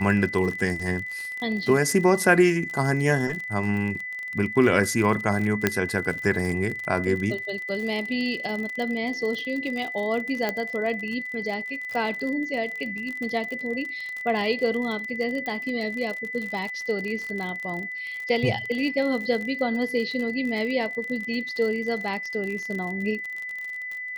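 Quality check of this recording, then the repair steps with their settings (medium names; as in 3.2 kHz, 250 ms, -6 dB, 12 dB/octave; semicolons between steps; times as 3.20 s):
crackle 48 per s -30 dBFS
whine 2 kHz -31 dBFS
5.67 s: pop -5 dBFS
10.49 s: pop -12 dBFS
15.46 s: pop -19 dBFS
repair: de-click; band-stop 2 kHz, Q 30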